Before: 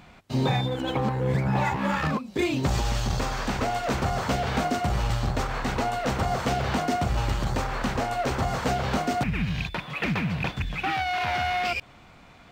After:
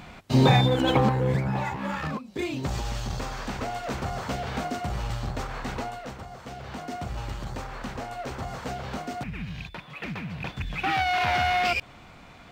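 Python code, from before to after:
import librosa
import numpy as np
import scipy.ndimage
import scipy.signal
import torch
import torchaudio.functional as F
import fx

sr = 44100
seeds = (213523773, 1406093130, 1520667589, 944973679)

y = fx.gain(x, sr, db=fx.line((0.95, 6.0), (1.64, -5.0), (5.77, -5.0), (6.31, -16.5), (7.04, -8.0), (10.3, -8.0), (10.98, 2.5)))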